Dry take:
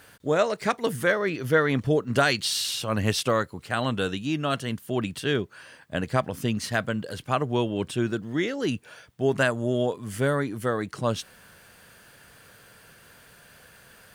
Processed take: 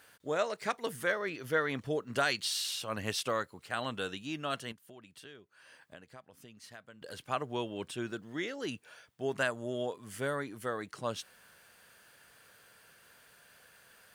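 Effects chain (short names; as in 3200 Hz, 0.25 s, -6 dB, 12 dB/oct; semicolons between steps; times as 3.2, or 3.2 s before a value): 4.72–7.02 compressor 5:1, threshold -41 dBFS, peak gain reduction 20.5 dB; low shelf 300 Hz -10 dB; gain -7 dB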